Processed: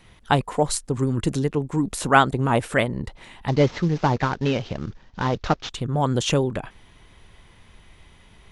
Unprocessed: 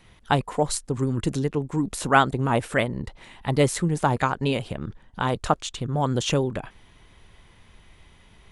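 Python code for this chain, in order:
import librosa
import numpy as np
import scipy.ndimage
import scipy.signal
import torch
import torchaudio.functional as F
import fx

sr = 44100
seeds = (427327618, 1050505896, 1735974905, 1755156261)

y = fx.cvsd(x, sr, bps=32000, at=(3.48, 5.7))
y = y * librosa.db_to_amplitude(2.0)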